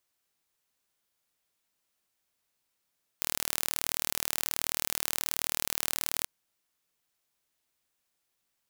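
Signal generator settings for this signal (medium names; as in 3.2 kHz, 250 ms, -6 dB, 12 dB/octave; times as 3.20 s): pulse train 38.7 per s, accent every 0, -2.5 dBFS 3.04 s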